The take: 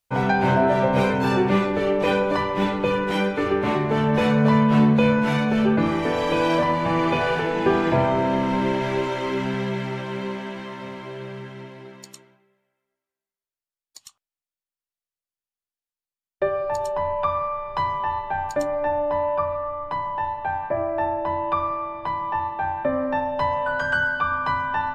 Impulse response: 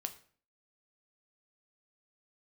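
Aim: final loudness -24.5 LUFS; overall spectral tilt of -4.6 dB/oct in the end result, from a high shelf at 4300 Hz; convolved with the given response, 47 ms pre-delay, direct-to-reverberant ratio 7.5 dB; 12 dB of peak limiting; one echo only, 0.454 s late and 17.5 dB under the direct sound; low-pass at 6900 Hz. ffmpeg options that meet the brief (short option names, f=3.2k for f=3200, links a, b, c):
-filter_complex "[0:a]lowpass=6.9k,highshelf=f=4.3k:g=3,alimiter=limit=-19dB:level=0:latency=1,aecho=1:1:454:0.133,asplit=2[a][b];[1:a]atrim=start_sample=2205,adelay=47[c];[b][c]afir=irnorm=-1:irlink=0,volume=-6.5dB[d];[a][d]amix=inputs=2:normalize=0,volume=3dB"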